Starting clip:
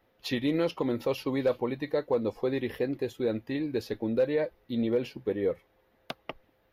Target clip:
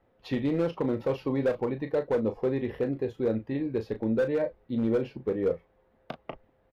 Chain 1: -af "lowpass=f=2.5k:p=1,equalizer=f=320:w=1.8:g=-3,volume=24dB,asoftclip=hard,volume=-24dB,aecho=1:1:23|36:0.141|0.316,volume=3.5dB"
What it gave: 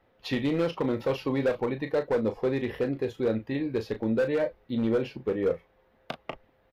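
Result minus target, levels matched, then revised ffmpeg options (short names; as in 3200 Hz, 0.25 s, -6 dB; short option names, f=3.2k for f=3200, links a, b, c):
2000 Hz band +4.0 dB
-af "lowpass=f=840:p=1,equalizer=f=320:w=1.8:g=-3,volume=24dB,asoftclip=hard,volume=-24dB,aecho=1:1:23|36:0.141|0.316,volume=3.5dB"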